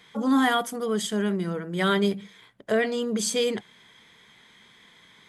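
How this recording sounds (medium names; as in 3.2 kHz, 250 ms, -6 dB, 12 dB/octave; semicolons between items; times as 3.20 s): noise floor -56 dBFS; spectral tilt -4.0 dB/octave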